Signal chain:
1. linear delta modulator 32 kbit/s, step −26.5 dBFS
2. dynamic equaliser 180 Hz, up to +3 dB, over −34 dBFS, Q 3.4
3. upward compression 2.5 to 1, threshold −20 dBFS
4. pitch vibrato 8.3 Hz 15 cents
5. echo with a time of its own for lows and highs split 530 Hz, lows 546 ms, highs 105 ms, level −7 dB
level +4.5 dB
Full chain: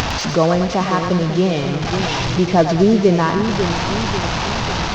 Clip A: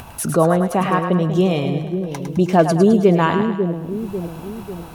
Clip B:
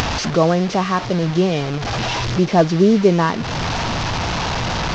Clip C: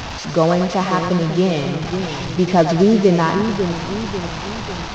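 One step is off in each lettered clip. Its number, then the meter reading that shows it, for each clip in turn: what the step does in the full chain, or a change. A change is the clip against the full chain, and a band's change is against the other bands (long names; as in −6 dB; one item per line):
1, 4 kHz band −10.5 dB
5, echo-to-direct ratio −5.5 dB to none audible
3, change in momentary loudness spread +5 LU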